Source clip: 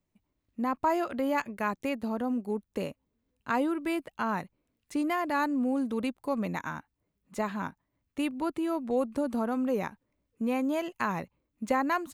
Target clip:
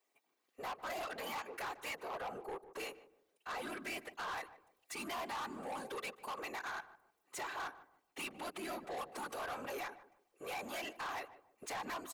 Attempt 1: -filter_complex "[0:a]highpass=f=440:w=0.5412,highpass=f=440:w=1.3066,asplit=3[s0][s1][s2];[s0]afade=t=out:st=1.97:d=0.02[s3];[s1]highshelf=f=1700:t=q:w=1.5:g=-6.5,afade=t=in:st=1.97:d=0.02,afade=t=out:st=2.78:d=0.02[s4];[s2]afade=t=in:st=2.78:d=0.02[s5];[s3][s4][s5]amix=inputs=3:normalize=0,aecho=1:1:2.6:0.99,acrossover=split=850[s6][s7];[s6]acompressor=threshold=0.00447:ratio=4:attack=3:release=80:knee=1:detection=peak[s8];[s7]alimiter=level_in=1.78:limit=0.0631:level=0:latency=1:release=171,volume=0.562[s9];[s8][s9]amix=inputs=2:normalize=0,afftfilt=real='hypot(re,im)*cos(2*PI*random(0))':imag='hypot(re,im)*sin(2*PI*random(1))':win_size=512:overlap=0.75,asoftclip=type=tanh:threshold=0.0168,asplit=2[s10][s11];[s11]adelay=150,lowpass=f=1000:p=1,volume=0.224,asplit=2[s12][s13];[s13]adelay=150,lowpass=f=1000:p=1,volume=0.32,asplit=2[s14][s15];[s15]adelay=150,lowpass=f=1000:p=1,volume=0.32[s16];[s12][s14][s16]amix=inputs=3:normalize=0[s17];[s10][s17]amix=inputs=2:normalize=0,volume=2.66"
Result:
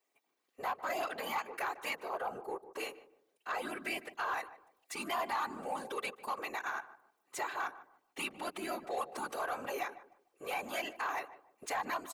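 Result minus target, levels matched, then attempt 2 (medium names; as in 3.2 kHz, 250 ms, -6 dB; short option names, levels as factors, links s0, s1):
saturation: distortion -11 dB
-filter_complex "[0:a]highpass=f=440:w=0.5412,highpass=f=440:w=1.3066,asplit=3[s0][s1][s2];[s0]afade=t=out:st=1.97:d=0.02[s3];[s1]highshelf=f=1700:t=q:w=1.5:g=-6.5,afade=t=in:st=1.97:d=0.02,afade=t=out:st=2.78:d=0.02[s4];[s2]afade=t=in:st=2.78:d=0.02[s5];[s3][s4][s5]amix=inputs=3:normalize=0,aecho=1:1:2.6:0.99,acrossover=split=850[s6][s7];[s6]acompressor=threshold=0.00447:ratio=4:attack=3:release=80:knee=1:detection=peak[s8];[s7]alimiter=level_in=1.78:limit=0.0631:level=0:latency=1:release=171,volume=0.562[s9];[s8][s9]amix=inputs=2:normalize=0,afftfilt=real='hypot(re,im)*cos(2*PI*random(0))':imag='hypot(re,im)*sin(2*PI*random(1))':win_size=512:overlap=0.75,asoftclip=type=tanh:threshold=0.00447,asplit=2[s10][s11];[s11]adelay=150,lowpass=f=1000:p=1,volume=0.224,asplit=2[s12][s13];[s13]adelay=150,lowpass=f=1000:p=1,volume=0.32,asplit=2[s14][s15];[s15]adelay=150,lowpass=f=1000:p=1,volume=0.32[s16];[s12][s14][s16]amix=inputs=3:normalize=0[s17];[s10][s17]amix=inputs=2:normalize=0,volume=2.66"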